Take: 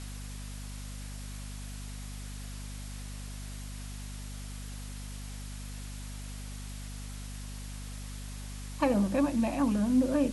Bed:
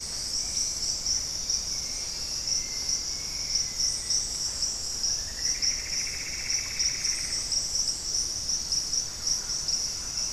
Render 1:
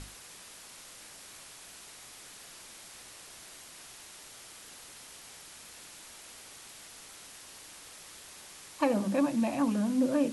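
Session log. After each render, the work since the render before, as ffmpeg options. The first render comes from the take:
-af "bandreject=f=50:t=h:w=6,bandreject=f=100:t=h:w=6,bandreject=f=150:t=h:w=6,bandreject=f=200:t=h:w=6,bandreject=f=250:t=h:w=6"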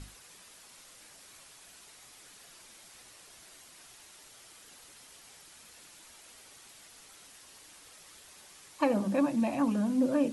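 -af "afftdn=nr=6:nf=-50"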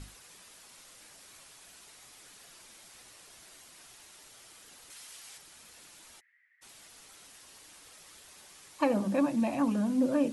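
-filter_complex "[0:a]asettb=1/sr,asplit=3[a][b][c];[a]atrim=end=4.904[d];[b]atrim=start=4.9:end=5.38,asetpts=PTS-STARTPTS,afade=t=in:d=0.004:c=qsin,afade=t=out:st=0.476:d=0.004:c=qsin,tiltshelf=f=810:g=-5.5[e];[c]atrim=start=5.376[f];[d][e]acrossfade=d=0.004:c1=hsin:c2=qsin[g];[g][f]acrossfade=d=0.004:c1=qsin:c2=hsin,asplit=3[h][i][j];[h]afade=t=out:st=6.19:d=0.02[k];[i]asuperpass=centerf=1900:order=4:qfactor=5.7,afade=t=in:st=6.19:d=0.02,afade=t=out:st=6.61:d=0.02[l];[j]afade=t=in:st=6.61:d=0.02[m];[k][l][m]amix=inputs=3:normalize=0"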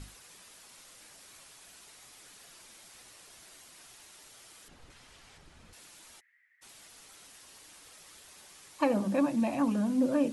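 -filter_complex "[0:a]asettb=1/sr,asplit=3[a][b][c];[a]atrim=end=4.684[d];[b]atrim=start=4.68:end=5.73,asetpts=PTS-STARTPTS,afade=t=in:d=0.004:c=qsin,afade=t=out:st=1.046:d=0.004:c=qsin,aemphasis=mode=reproduction:type=riaa[e];[c]atrim=start=5.726[f];[d][e]acrossfade=d=0.004:c1=hsin:c2=qsin[g];[g][f]acrossfade=d=0.004:c1=qsin:c2=hsin"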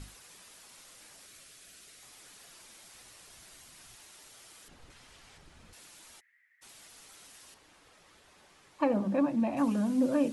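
-filter_complex "[0:a]asettb=1/sr,asplit=3[a][b][c];[a]atrim=end=1.264[d];[b]atrim=start=1.26:end=2.03,asetpts=PTS-STARTPTS,afade=t=in:d=0.004:c=qsin,afade=t=out:st=0.766:d=0.004:c=qsin,equalizer=f=910:t=o:w=0.46:g=-13[e];[c]atrim=start=2.026[f];[d][e]acrossfade=d=0.004:c1=hsin:c2=qsin[g];[g][f]acrossfade=d=0.004:c1=qsin:c2=hsin,asettb=1/sr,asplit=3[h][i][j];[h]atrim=end=2.834[k];[i]atrim=start=2.83:end=3.96,asetpts=PTS-STARTPTS,afade=t=in:d=0.004:c=qsin,afade=t=out:st=1.126:d=0.004:c=qsin,asubboost=boost=6:cutoff=220[l];[j]atrim=start=3.956[m];[k][l]acrossfade=d=0.004:c1=hsin:c2=qsin[n];[n][m]acrossfade=d=0.004:c1=qsin:c2=hsin,asettb=1/sr,asplit=3[o][p][q];[o]atrim=end=7.544[r];[p]atrim=start=7.54:end=9.57,asetpts=PTS-STARTPTS,afade=t=in:d=0.004:c=qsin,afade=t=out:st=2.026:d=0.004:c=qsin,lowpass=f=1.8k:p=1[s];[q]atrim=start=9.566[t];[r][s]acrossfade=d=0.004:c1=hsin:c2=qsin[u];[u][t]acrossfade=d=0.004:c1=qsin:c2=hsin"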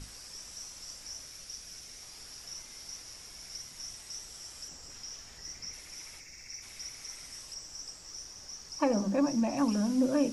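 -filter_complex "[1:a]volume=-16.5dB[a];[0:a][a]amix=inputs=2:normalize=0"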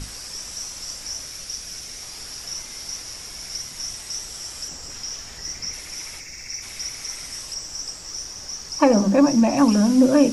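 -af "volume=12dB"

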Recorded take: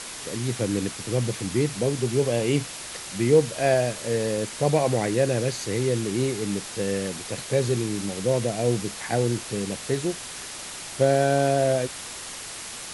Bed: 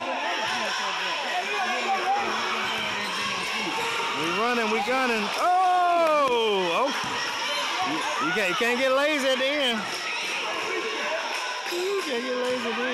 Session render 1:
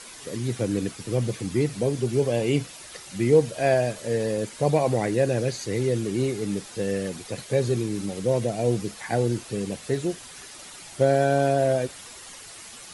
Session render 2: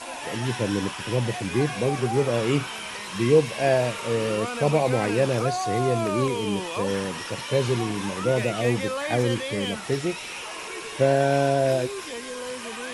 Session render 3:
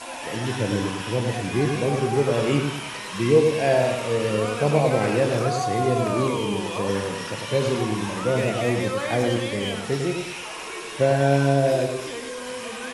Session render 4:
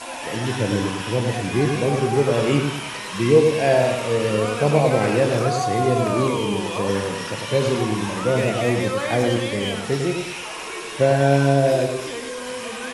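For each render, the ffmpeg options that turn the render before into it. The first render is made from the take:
-af "afftdn=nr=9:nf=-37"
-filter_complex "[1:a]volume=-7.5dB[a];[0:a][a]amix=inputs=2:normalize=0"
-filter_complex "[0:a]asplit=2[a][b];[b]adelay=28,volume=-12.5dB[c];[a][c]amix=inputs=2:normalize=0,asplit=2[d][e];[e]adelay=101,lowpass=f=2k:p=1,volume=-4.5dB,asplit=2[f][g];[g]adelay=101,lowpass=f=2k:p=1,volume=0.41,asplit=2[h][i];[i]adelay=101,lowpass=f=2k:p=1,volume=0.41,asplit=2[j][k];[k]adelay=101,lowpass=f=2k:p=1,volume=0.41,asplit=2[l][m];[m]adelay=101,lowpass=f=2k:p=1,volume=0.41[n];[f][h][j][l][n]amix=inputs=5:normalize=0[o];[d][o]amix=inputs=2:normalize=0"
-af "volume=2.5dB"

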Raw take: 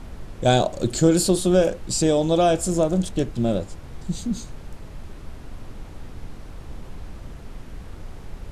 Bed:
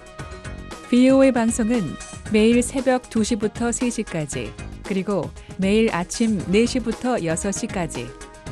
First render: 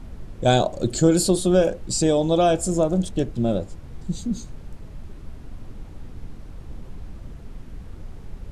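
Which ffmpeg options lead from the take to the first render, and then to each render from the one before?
-af "afftdn=nr=6:nf=-39"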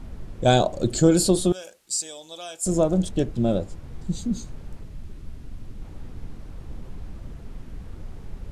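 -filter_complex "[0:a]asettb=1/sr,asplit=3[a][b][c];[a]atrim=end=1.524[d];[b]atrim=start=1.52:end=2.66,asetpts=PTS-STARTPTS,afade=t=in:d=0.004:c=qsin,afade=t=out:st=1.136:d=0.004:c=qsin,aderivative[e];[c]atrim=start=2.656[f];[d][e]acrossfade=d=0.004:c1=hsin:c2=qsin[g];[g][f]acrossfade=d=0.004:c1=qsin:c2=hsin,asettb=1/sr,asplit=3[h][i][j];[h]atrim=end=4.834[k];[i]atrim=start=4.83:end=5.82,asetpts=PTS-STARTPTS,afade=t=in:d=0.004:c=qsin,afade=t=out:st=0.986:d=0.004:c=qsin,equalizer=f=800:t=o:w=2.5:g=-5.5[l];[j]atrim=start=5.816[m];[k][l]acrossfade=d=0.004:c1=hsin:c2=qsin[n];[n][m]acrossfade=d=0.004:c1=qsin:c2=hsin"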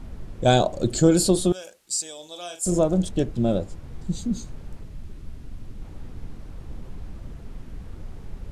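-filter_complex "[0:a]asettb=1/sr,asplit=3[a][b][c];[a]atrim=end=2.154[d];[b]atrim=start=2.15:end=2.79,asetpts=PTS-STARTPTS,afade=t=in:d=0.004:c=qsin,afade=t=out:st=0.636:d=0.004:c=qsin,asplit=2[e][f];[f]adelay=40,volume=-8.5dB[g];[e][g]amix=inputs=2:normalize=0,atrim=end_sample=28224[h];[c]atrim=start=2.786[i];[d][h]acrossfade=d=0.004:c1=hsin:c2=qsin[j];[j][i]acrossfade=d=0.004:c1=qsin:c2=hsin"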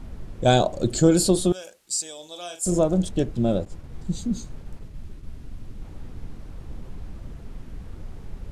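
-filter_complex "[0:a]asettb=1/sr,asplit=3[a][b][c];[a]atrim=end=3.654[d];[b]atrim=start=3.65:end=5.28,asetpts=PTS-STARTPTS,afade=t=in:d=0.004:c=qsin,afade=t=out:st=1.626:d=0.004:c=qsin,agate=range=-33dB:threshold=-37dB:ratio=3:release=100:detection=peak[e];[c]atrim=start=5.276[f];[d][e]acrossfade=d=0.004:c1=hsin:c2=qsin[g];[g][f]acrossfade=d=0.004:c1=qsin:c2=hsin"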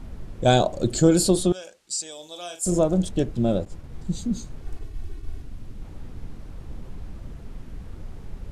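-filter_complex "[0:a]asettb=1/sr,asplit=3[a][b][c];[a]atrim=end=1.434[d];[b]atrim=start=1.43:end=2.12,asetpts=PTS-STARTPTS,afade=t=in:d=0.004:c=qsin,afade=t=out:st=0.686:d=0.004:c=qsin,lowpass=8k[e];[c]atrim=start=2.116[f];[d][e]acrossfade=d=0.004:c1=hsin:c2=qsin[g];[g][f]acrossfade=d=0.004:c1=qsin:c2=hsin,asettb=1/sr,asplit=3[h][i][j];[h]atrim=end=4.624[k];[i]atrim=start=4.62:end=5.42,asetpts=PTS-STARTPTS,afade=t=in:d=0.004:c=qsin,afade=t=out:st=0.796:d=0.004:c=qsin,aecho=1:1:2.7:0.91,atrim=end_sample=35280[l];[j]atrim=start=5.416[m];[k][l]acrossfade=d=0.004:c1=hsin:c2=qsin[n];[n][m]acrossfade=d=0.004:c1=qsin:c2=hsin"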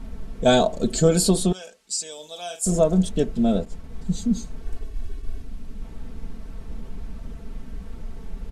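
-af "aecho=1:1:4.5:0.7"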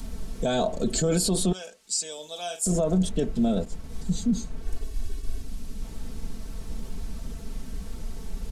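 -filter_complex "[0:a]acrossover=split=130|4200[a][b][c];[c]acompressor=mode=upward:threshold=-43dB:ratio=2.5[d];[a][b][d]amix=inputs=3:normalize=0,alimiter=limit=-16dB:level=0:latency=1:release=14"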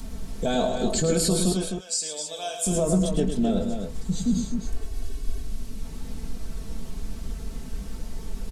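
-filter_complex "[0:a]asplit=2[a][b];[b]adelay=20,volume=-11dB[c];[a][c]amix=inputs=2:normalize=0,asplit=2[d][e];[e]aecho=0:1:107.9|259.5:0.398|0.447[f];[d][f]amix=inputs=2:normalize=0"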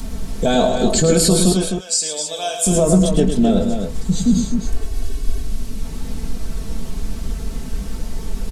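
-af "volume=8.5dB"

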